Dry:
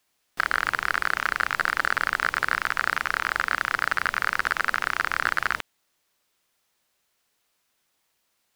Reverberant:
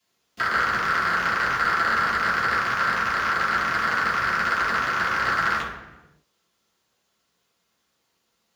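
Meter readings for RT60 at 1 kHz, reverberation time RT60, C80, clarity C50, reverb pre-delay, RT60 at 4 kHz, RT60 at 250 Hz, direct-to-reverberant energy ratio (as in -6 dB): 0.95 s, 1.1 s, 5.5 dB, 2.5 dB, 3 ms, 0.80 s, 1.4 s, -9.5 dB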